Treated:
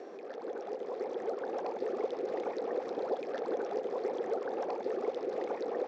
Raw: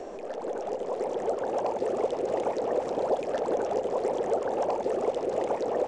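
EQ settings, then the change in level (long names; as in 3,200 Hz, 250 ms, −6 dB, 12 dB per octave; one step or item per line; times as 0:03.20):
loudspeaker in its box 280–5,000 Hz, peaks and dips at 620 Hz −9 dB, 930 Hz −7 dB, 2,900 Hz −7 dB
−3.0 dB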